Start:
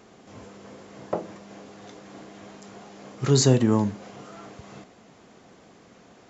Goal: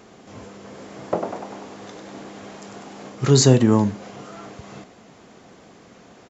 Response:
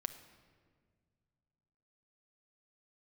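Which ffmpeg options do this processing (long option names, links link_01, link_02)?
-filter_complex "[0:a]asplit=3[link_01][link_02][link_03];[link_01]afade=type=out:start_time=0.73:duration=0.02[link_04];[link_02]asplit=9[link_05][link_06][link_07][link_08][link_09][link_10][link_11][link_12][link_13];[link_06]adelay=98,afreqshift=61,volume=-5.5dB[link_14];[link_07]adelay=196,afreqshift=122,volume=-10.1dB[link_15];[link_08]adelay=294,afreqshift=183,volume=-14.7dB[link_16];[link_09]adelay=392,afreqshift=244,volume=-19.2dB[link_17];[link_10]adelay=490,afreqshift=305,volume=-23.8dB[link_18];[link_11]adelay=588,afreqshift=366,volume=-28.4dB[link_19];[link_12]adelay=686,afreqshift=427,volume=-33dB[link_20];[link_13]adelay=784,afreqshift=488,volume=-37.6dB[link_21];[link_05][link_14][link_15][link_16][link_17][link_18][link_19][link_20][link_21]amix=inputs=9:normalize=0,afade=type=in:start_time=0.73:duration=0.02,afade=type=out:start_time=3.08:duration=0.02[link_22];[link_03]afade=type=in:start_time=3.08:duration=0.02[link_23];[link_04][link_22][link_23]amix=inputs=3:normalize=0,volume=4.5dB"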